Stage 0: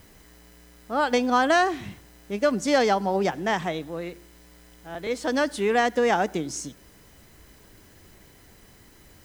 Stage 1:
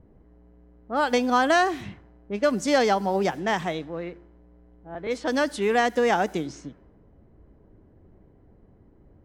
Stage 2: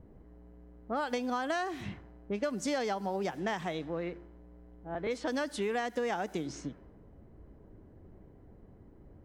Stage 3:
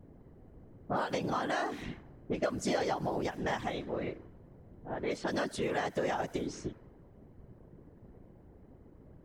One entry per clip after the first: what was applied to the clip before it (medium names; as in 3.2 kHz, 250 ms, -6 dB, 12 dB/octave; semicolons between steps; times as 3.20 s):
level-controlled noise filter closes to 500 Hz, open at -22 dBFS
compression 5:1, threshold -31 dBFS, peak gain reduction 14 dB
whisper effect